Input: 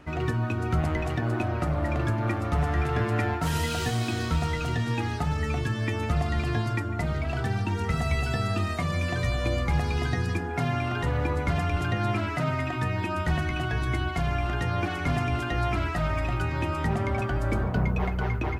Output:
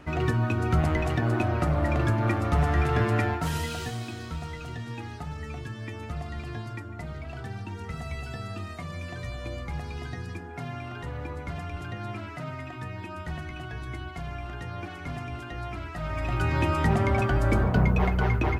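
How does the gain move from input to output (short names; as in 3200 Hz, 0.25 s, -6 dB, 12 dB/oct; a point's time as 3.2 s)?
3.1 s +2 dB
4.19 s -9 dB
15.89 s -9 dB
16.51 s +3.5 dB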